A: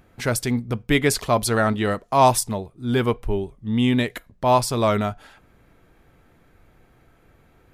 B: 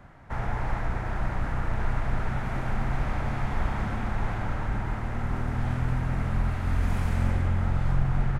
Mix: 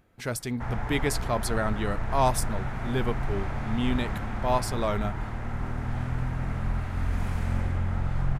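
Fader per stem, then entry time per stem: -8.5 dB, -2.5 dB; 0.00 s, 0.30 s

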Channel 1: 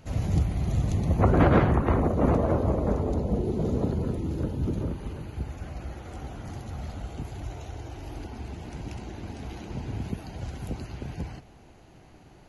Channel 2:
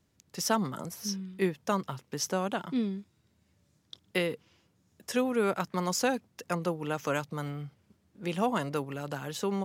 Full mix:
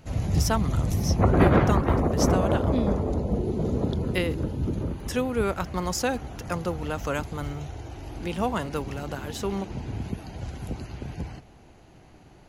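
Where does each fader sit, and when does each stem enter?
+0.5 dB, +1.5 dB; 0.00 s, 0.00 s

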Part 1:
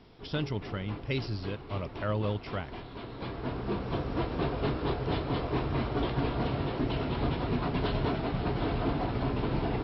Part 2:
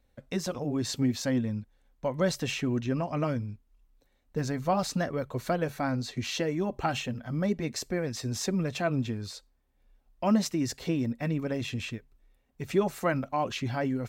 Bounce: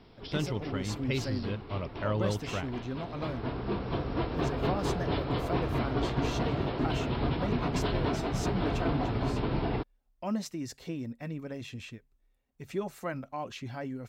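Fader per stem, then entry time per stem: 0.0 dB, -8.0 dB; 0.00 s, 0.00 s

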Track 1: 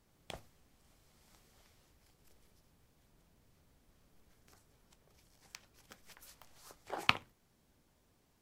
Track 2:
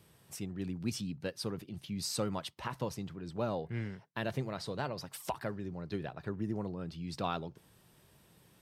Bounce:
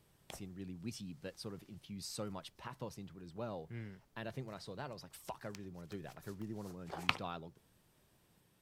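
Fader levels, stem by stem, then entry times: -4.0 dB, -8.5 dB; 0.00 s, 0.00 s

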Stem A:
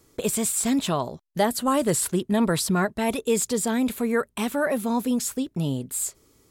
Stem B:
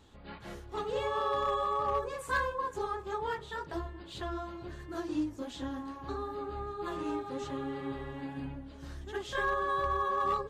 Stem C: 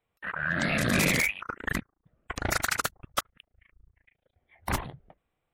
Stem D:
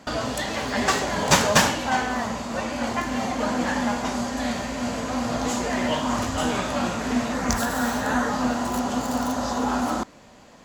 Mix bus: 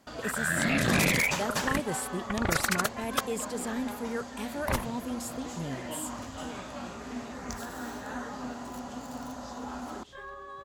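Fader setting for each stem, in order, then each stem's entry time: -11.0 dB, -12.5 dB, -0.5 dB, -14.5 dB; 0.00 s, 0.80 s, 0.00 s, 0.00 s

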